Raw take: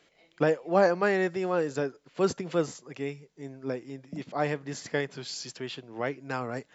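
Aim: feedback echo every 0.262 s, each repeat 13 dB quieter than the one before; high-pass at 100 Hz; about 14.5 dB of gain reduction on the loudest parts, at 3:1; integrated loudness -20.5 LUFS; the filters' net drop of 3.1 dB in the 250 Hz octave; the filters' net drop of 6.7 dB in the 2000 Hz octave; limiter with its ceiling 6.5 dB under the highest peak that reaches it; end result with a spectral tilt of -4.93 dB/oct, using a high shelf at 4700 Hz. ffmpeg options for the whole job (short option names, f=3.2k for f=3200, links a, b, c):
-af "highpass=100,equalizer=f=250:t=o:g=-4.5,equalizer=f=2k:t=o:g=-7.5,highshelf=f=4.7k:g=-7.5,acompressor=threshold=-39dB:ratio=3,alimiter=level_in=7.5dB:limit=-24dB:level=0:latency=1,volume=-7.5dB,aecho=1:1:262|524|786:0.224|0.0493|0.0108,volume=23dB"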